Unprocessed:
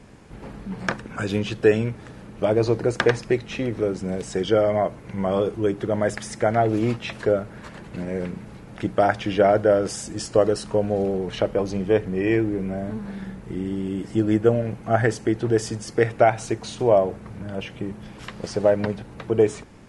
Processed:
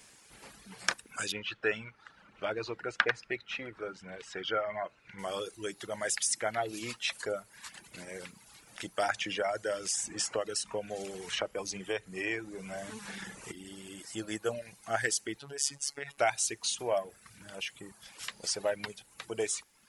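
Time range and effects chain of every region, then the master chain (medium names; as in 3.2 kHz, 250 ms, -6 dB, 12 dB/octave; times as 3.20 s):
1.32–5.19 s: Chebyshev low-pass 2.4 kHz + peaking EQ 1.4 kHz +7.5 dB 0.26 oct
9.10–13.52 s: low-pass 7.9 kHz + peaking EQ 4.2 kHz -6 dB 0.66 oct + three bands compressed up and down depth 70%
15.39–16.18 s: treble shelf 9.5 kHz -3 dB + compression, threshold -19 dBFS + robot voice 141 Hz
whole clip: pre-emphasis filter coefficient 0.97; reverb removal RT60 0.88 s; trim +8 dB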